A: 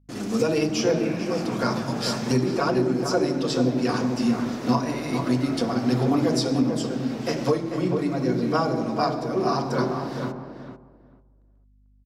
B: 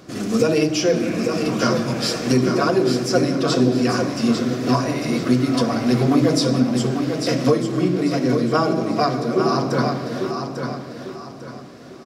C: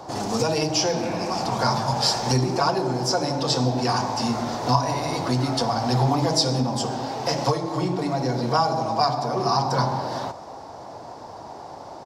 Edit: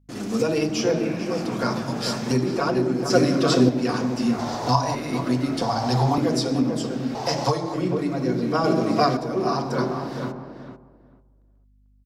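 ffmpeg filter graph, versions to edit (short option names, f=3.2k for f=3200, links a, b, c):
-filter_complex "[1:a]asplit=2[a][b];[2:a]asplit=3[c][d][e];[0:a]asplit=6[f][g][h][i][j][k];[f]atrim=end=3.102[l];[a]atrim=start=3.098:end=3.692[m];[g]atrim=start=3.688:end=4.392[n];[c]atrim=start=4.388:end=4.952[o];[h]atrim=start=4.948:end=5.622[p];[d]atrim=start=5.618:end=6.182[q];[i]atrim=start=6.178:end=7.152[r];[e]atrim=start=7.148:end=7.742[s];[j]atrim=start=7.738:end=8.642[t];[b]atrim=start=8.638:end=9.172[u];[k]atrim=start=9.168[v];[l][m]acrossfade=d=0.004:c1=hsin:c2=hsin[w];[w][n]acrossfade=d=0.004:c1=hsin:c2=hsin[x];[x][o]acrossfade=d=0.004:c1=hsin:c2=hsin[y];[y][p]acrossfade=d=0.004:c1=hsin:c2=hsin[z];[z][q]acrossfade=d=0.004:c1=hsin:c2=hsin[aa];[aa][r]acrossfade=d=0.004:c1=hsin:c2=hsin[ab];[ab][s]acrossfade=d=0.004:c1=hsin:c2=hsin[ac];[ac][t]acrossfade=d=0.004:c1=hsin:c2=hsin[ad];[ad][u]acrossfade=d=0.004:c1=hsin:c2=hsin[ae];[ae][v]acrossfade=d=0.004:c1=hsin:c2=hsin"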